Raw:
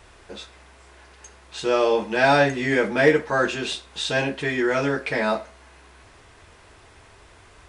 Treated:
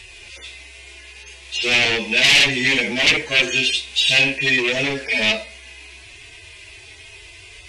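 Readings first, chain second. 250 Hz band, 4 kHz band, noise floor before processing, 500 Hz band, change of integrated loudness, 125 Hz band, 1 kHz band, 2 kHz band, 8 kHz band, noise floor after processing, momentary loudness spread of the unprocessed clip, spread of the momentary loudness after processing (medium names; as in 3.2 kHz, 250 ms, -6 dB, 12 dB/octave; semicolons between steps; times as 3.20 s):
-2.0 dB, +15.0 dB, -51 dBFS, -6.0 dB, +6.0 dB, -1.0 dB, -7.5 dB, +7.5 dB, +11.5 dB, -43 dBFS, 11 LU, 10 LU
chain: harmonic-percussive separation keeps harmonic; sine folder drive 15 dB, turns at -5.5 dBFS; resonant high shelf 1.8 kHz +10.5 dB, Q 3; trim -14.5 dB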